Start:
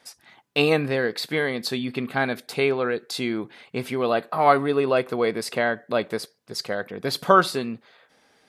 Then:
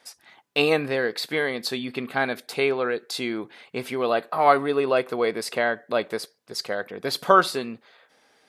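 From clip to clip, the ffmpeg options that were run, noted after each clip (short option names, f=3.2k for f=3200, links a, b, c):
-af "bass=f=250:g=-7,treble=f=4k:g=0"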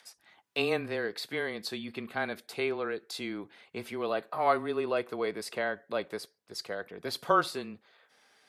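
-filter_complex "[0:a]afreqshift=-16,acrossover=split=880[a][b];[b]acompressor=mode=upward:threshold=-48dB:ratio=2.5[c];[a][c]amix=inputs=2:normalize=0,volume=-8.5dB"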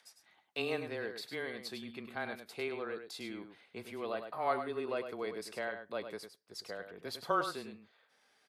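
-af "aecho=1:1:102:0.376,volume=-7dB"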